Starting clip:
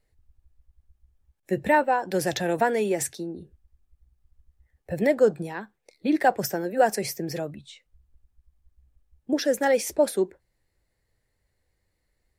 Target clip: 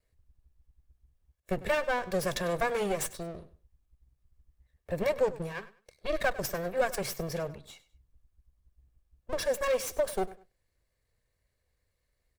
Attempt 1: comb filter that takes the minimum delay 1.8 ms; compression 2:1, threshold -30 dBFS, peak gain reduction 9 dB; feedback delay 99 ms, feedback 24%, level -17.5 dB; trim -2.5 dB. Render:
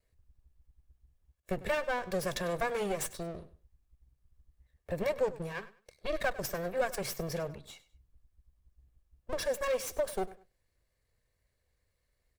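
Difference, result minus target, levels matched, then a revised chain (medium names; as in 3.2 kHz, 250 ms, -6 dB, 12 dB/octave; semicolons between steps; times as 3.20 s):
compression: peak gain reduction +3 dB
comb filter that takes the minimum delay 1.8 ms; compression 2:1, threshold -23.5 dBFS, peak gain reduction 5.5 dB; feedback delay 99 ms, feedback 24%, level -17.5 dB; trim -2.5 dB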